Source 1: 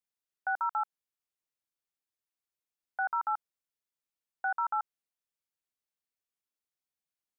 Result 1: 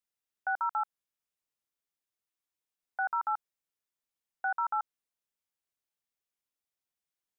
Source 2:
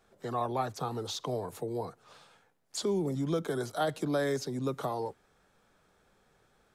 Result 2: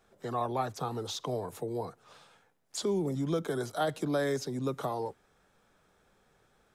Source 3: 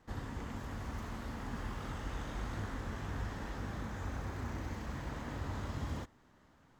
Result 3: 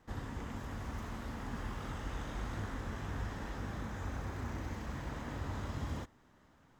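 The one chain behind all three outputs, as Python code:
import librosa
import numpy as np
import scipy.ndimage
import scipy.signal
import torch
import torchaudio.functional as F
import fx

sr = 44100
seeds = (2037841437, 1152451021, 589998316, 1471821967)

y = fx.notch(x, sr, hz=4400.0, q=26.0)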